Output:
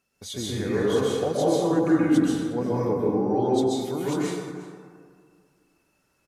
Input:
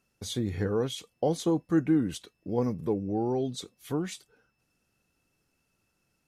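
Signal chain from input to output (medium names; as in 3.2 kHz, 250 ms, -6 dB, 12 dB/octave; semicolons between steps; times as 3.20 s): bass shelf 210 Hz -8 dB; delay 357 ms -18.5 dB; plate-style reverb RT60 2 s, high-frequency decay 0.35×, pre-delay 115 ms, DRR -7.5 dB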